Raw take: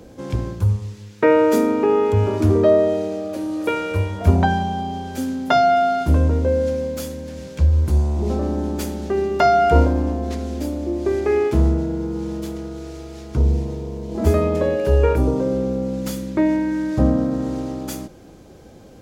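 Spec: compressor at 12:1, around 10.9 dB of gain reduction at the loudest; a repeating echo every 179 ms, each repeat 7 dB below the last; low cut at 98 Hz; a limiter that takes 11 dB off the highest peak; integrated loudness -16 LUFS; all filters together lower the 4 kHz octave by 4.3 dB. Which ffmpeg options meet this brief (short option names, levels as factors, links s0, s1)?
-af "highpass=98,equalizer=f=4000:t=o:g=-6,acompressor=threshold=0.0794:ratio=12,alimiter=limit=0.0891:level=0:latency=1,aecho=1:1:179|358|537|716|895:0.447|0.201|0.0905|0.0407|0.0183,volume=4.47"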